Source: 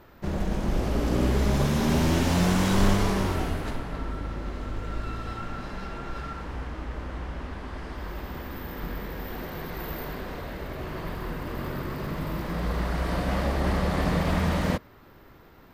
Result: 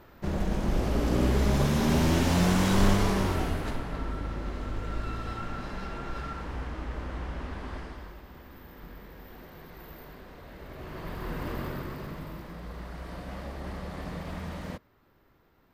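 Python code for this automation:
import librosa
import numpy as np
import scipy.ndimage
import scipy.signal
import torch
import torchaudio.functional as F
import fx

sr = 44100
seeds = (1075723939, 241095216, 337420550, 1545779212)

y = fx.gain(x, sr, db=fx.line((7.75, -1.0), (8.22, -12.0), (10.36, -12.0), (11.46, 0.0), (12.61, -12.5)))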